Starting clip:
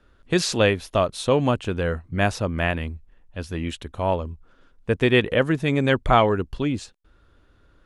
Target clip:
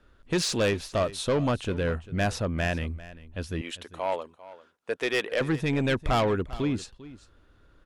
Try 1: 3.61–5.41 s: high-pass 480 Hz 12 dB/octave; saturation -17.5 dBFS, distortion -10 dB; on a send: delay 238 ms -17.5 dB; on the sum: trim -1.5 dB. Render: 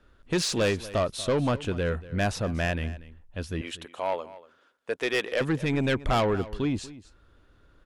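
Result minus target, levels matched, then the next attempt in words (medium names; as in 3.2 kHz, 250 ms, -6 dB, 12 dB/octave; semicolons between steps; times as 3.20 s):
echo 159 ms early
3.61–5.41 s: high-pass 480 Hz 12 dB/octave; saturation -17.5 dBFS, distortion -10 dB; on a send: delay 397 ms -17.5 dB; on the sum: trim -1.5 dB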